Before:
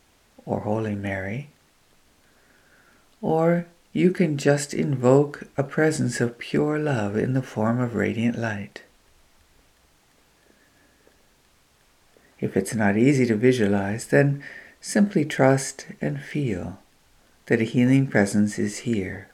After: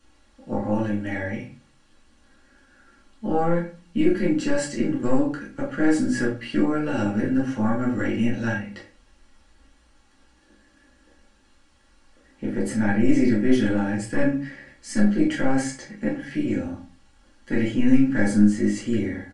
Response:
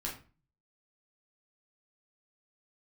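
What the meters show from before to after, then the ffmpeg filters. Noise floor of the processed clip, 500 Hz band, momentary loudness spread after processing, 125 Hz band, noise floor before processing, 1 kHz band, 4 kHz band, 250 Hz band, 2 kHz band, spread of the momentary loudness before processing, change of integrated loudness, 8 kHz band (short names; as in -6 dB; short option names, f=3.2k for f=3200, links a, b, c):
-59 dBFS, -4.5 dB, 12 LU, -5.0 dB, -61 dBFS, -2.0 dB, -2.0 dB, +2.0 dB, -2.0 dB, 12 LU, -0.5 dB, -4.0 dB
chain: -filter_complex "[0:a]aecho=1:1:3.6:0.65,aeval=exprs='(tanh(2*val(0)+0.55)-tanh(0.55))/2':c=same,aresample=22050,aresample=44100,acrossover=split=130[a][b];[b]alimiter=limit=-15dB:level=0:latency=1:release=13[c];[a][c]amix=inputs=2:normalize=0[d];[1:a]atrim=start_sample=2205[e];[d][e]afir=irnorm=-1:irlink=0,volume=-1.5dB"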